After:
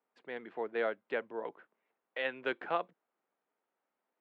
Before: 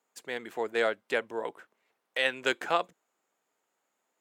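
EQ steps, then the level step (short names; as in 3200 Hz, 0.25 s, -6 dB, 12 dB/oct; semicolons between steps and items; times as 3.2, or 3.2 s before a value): HPF 130 Hz 24 dB/oct; LPF 7000 Hz; air absorption 410 m; -4.0 dB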